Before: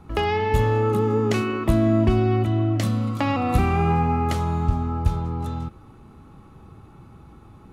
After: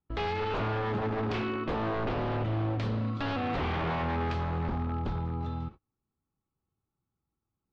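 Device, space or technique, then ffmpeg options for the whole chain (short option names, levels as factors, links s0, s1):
synthesiser wavefolder: -af "bandreject=f=212.2:t=h:w=4,bandreject=f=424.4:t=h:w=4,bandreject=f=636.6:t=h:w=4,bandreject=f=848.8:t=h:w=4,bandreject=f=1061:t=h:w=4,bandreject=f=1273.2:t=h:w=4,bandreject=f=1485.4:t=h:w=4,bandreject=f=1697.6:t=h:w=4,bandreject=f=1909.8:t=h:w=4,bandreject=f=2122:t=h:w=4,bandreject=f=2334.2:t=h:w=4,bandreject=f=2546.4:t=h:w=4,bandreject=f=2758.6:t=h:w=4,bandreject=f=2970.8:t=h:w=4,bandreject=f=3183:t=h:w=4,bandreject=f=3395.2:t=h:w=4,bandreject=f=3607.4:t=h:w=4,bandreject=f=3819.6:t=h:w=4,bandreject=f=4031.8:t=h:w=4,bandreject=f=4244:t=h:w=4,bandreject=f=4456.2:t=h:w=4,bandreject=f=4668.4:t=h:w=4,bandreject=f=4880.6:t=h:w=4,bandreject=f=5092.8:t=h:w=4,bandreject=f=5305:t=h:w=4,bandreject=f=5517.2:t=h:w=4,bandreject=f=5729.4:t=h:w=4,bandreject=f=5941.6:t=h:w=4,bandreject=f=6153.8:t=h:w=4,bandreject=f=6366:t=h:w=4,bandreject=f=6578.2:t=h:w=4,bandreject=f=6790.4:t=h:w=4,bandreject=f=7002.6:t=h:w=4,bandreject=f=7214.8:t=h:w=4,bandreject=f=7427:t=h:w=4,bandreject=f=7639.2:t=h:w=4,bandreject=f=7851.4:t=h:w=4,aeval=exprs='0.106*(abs(mod(val(0)/0.106+3,4)-2)-1)':c=same,lowpass=f=4400:w=0.5412,lowpass=f=4400:w=1.3066,agate=range=0.02:threshold=0.0158:ratio=16:detection=peak,volume=0.501"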